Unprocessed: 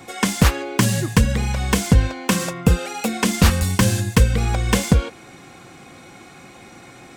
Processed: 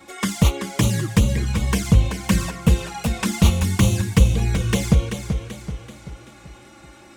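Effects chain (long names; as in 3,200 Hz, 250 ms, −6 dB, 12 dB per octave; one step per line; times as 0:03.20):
notch comb filter 250 Hz
flanger swept by the level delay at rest 3.9 ms, full sweep at −14 dBFS
feedback echo with a swinging delay time 384 ms, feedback 48%, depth 56 cents, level −8 dB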